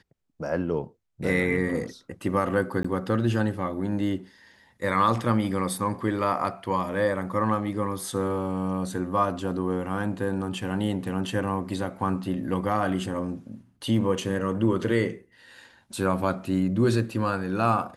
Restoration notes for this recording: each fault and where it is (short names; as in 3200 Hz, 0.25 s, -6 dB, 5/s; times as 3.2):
2.83–2.85 gap 15 ms